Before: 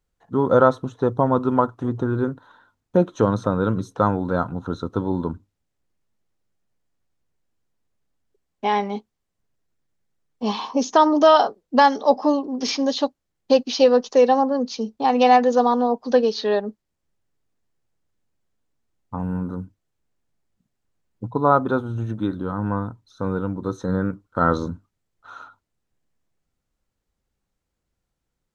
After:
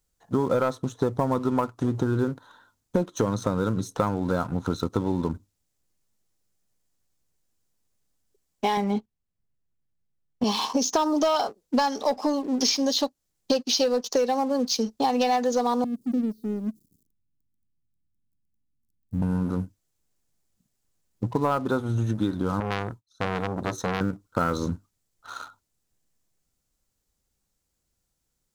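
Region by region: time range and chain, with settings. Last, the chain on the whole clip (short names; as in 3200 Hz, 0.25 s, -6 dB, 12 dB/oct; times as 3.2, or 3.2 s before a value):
8.77–10.44 gate -52 dBFS, range -10 dB + tone controls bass +9 dB, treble -12 dB
15.84–19.22 switching spikes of -16.5 dBFS + inverse Chebyshev low-pass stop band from 700 Hz, stop band 50 dB
22.6–24.01 expander -45 dBFS + core saturation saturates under 1400 Hz
whole clip: sample leveller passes 1; tone controls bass +1 dB, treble +12 dB; compressor, threshold -21 dBFS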